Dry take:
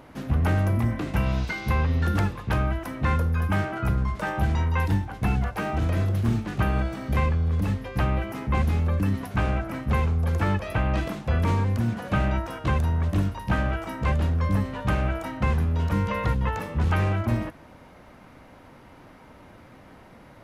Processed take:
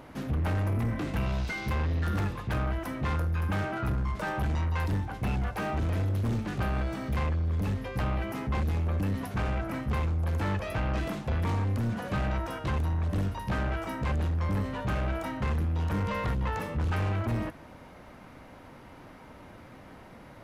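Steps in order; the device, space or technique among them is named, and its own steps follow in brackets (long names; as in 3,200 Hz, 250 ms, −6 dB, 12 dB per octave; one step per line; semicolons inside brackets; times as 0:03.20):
saturation between pre-emphasis and de-emphasis (high-shelf EQ 2,000 Hz +10.5 dB; soft clipping −24.5 dBFS, distortion −10 dB; high-shelf EQ 2,000 Hz −10.5 dB)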